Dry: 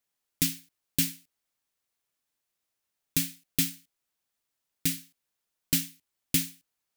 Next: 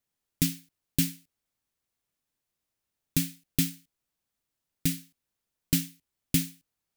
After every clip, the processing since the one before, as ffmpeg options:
-af "lowshelf=f=320:g=10,volume=-2.5dB"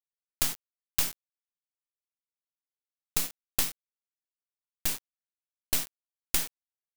-af "aeval=exprs='(tanh(7.08*val(0)+0.55)-tanh(0.55))/7.08':c=same,tiltshelf=f=1.3k:g=-6.5,acrusher=bits=3:dc=4:mix=0:aa=0.000001,volume=3.5dB"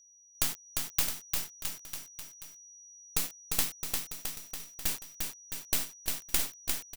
-filter_complex "[0:a]aeval=exprs='val(0)+0.00178*sin(2*PI*5800*n/s)':c=same,asplit=2[a][b];[b]aecho=0:1:350|665|948.5|1204|1433:0.631|0.398|0.251|0.158|0.1[c];[a][c]amix=inputs=2:normalize=0,volume=-2dB"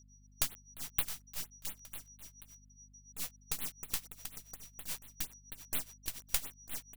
-af "tremolo=f=7.1:d=0.88,aeval=exprs='val(0)+0.00126*(sin(2*PI*50*n/s)+sin(2*PI*2*50*n/s)/2+sin(2*PI*3*50*n/s)/3+sin(2*PI*4*50*n/s)/4+sin(2*PI*5*50*n/s)/5)':c=same,afftfilt=real='re*(1-between(b*sr/1024,240*pow(6400/240,0.5+0.5*sin(2*PI*4.2*pts/sr))/1.41,240*pow(6400/240,0.5+0.5*sin(2*PI*4.2*pts/sr))*1.41))':imag='im*(1-between(b*sr/1024,240*pow(6400/240,0.5+0.5*sin(2*PI*4.2*pts/sr))/1.41,240*pow(6400/240,0.5+0.5*sin(2*PI*4.2*pts/sr))*1.41))':win_size=1024:overlap=0.75,volume=-2.5dB"

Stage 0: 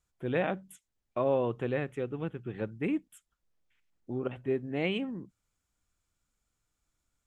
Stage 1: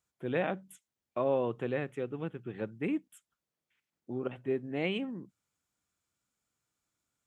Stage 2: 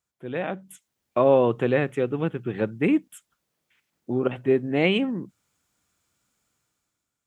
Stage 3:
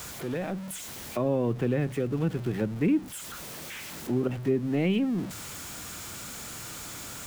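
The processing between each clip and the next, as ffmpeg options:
-af "highpass=120,volume=-1.5dB"
-af "dynaudnorm=f=110:g=13:m=11.5dB"
-filter_complex "[0:a]aeval=exprs='val(0)+0.5*0.0224*sgn(val(0))':c=same,acrossover=split=290[a][b];[b]acompressor=threshold=-36dB:ratio=2.5[c];[a][c]amix=inputs=2:normalize=0"

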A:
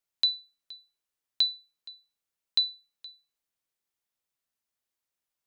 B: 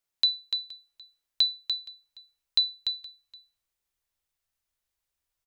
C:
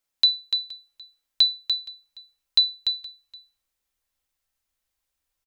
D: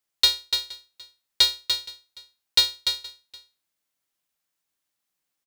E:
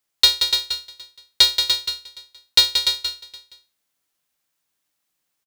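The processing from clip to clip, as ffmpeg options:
-af "asubboost=boost=8.5:cutoff=71,aecho=1:1:293:0.473,volume=1.5dB"
-af "aecho=1:1:3.8:0.31,volume=3dB"
-af "highpass=f=160:p=1,aeval=exprs='val(0)*sgn(sin(2*PI*230*n/s))':c=same"
-af "aecho=1:1:179:0.447,volume=4.5dB"

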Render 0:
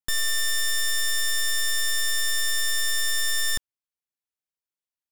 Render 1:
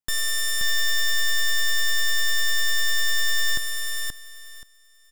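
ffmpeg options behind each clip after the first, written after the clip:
-af "aecho=1:1:528|1056|1584:0.631|0.126|0.0252"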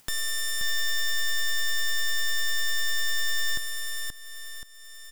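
-af "acompressor=mode=upward:threshold=-27dB:ratio=2.5,volume=-4.5dB"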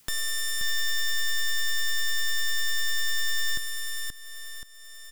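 -af "adynamicequalizer=threshold=0.00126:dfrequency=740:dqfactor=1.8:tfrequency=740:tqfactor=1.8:attack=5:release=100:ratio=0.375:range=3.5:mode=cutabove:tftype=bell"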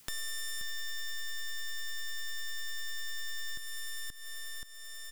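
-af "acompressor=threshold=-40dB:ratio=3"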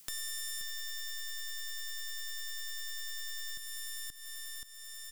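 -af "highshelf=f=3.6k:g=9,volume=-6dB"

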